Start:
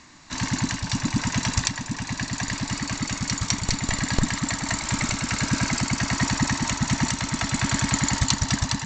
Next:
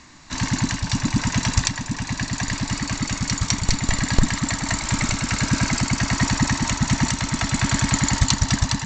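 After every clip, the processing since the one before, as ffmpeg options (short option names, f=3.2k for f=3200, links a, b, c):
-af "lowshelf=f=77:g=7,volume=2dB"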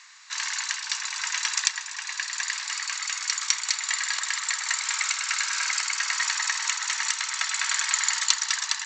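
-af "highpass=f=1.2k:w=0.5412,highpass=f=1.2k:w=1.3066"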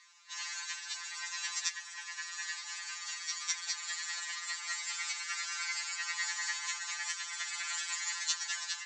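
-af "afftfilt=real='re*2.83*eq(mod(b,8),0)':imag='im*2.83*eq(mod(b,8),0)':win_size=2048:overlap=0.75,volume=-8dB"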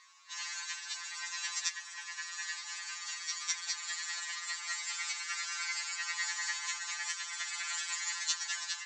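-af "aeval=exprs='val(0)+0.000501*sin(2*PI*1100*n/s)':c=same"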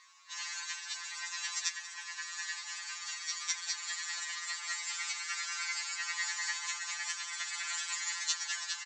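-af "aecho=1:1:181|723:0.133|0.133"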